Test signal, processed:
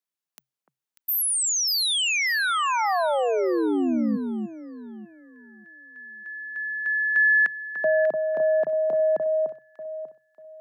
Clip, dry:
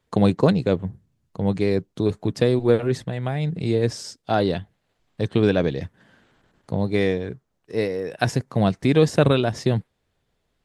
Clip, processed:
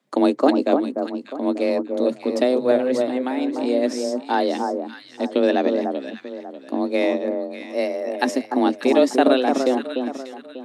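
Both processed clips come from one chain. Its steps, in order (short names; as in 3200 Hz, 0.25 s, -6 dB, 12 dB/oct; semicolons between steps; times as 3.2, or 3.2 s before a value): echo with dull and thin repeats by turns 0.296 s, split 1200 Hz, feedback 54%, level -4.5 dB; frequency shift +130 Hz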